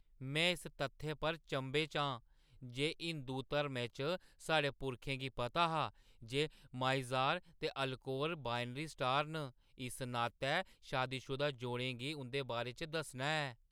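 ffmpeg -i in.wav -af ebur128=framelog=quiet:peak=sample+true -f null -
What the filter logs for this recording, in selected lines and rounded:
Integrated loudness:
  I:         -39.2 LUFS
  Threshold: -49.4 LUFS
Loudness range:
  LRA:         2.0 LU
  Threshold: -59.5 LUFS
  LRA low:   -40.5 LUFS
  LRA high:  -38.5 LUFS
Sample peak:
  Peak:      -19.9 dBFS
True peak:
  Peak:      -19.8 dBFS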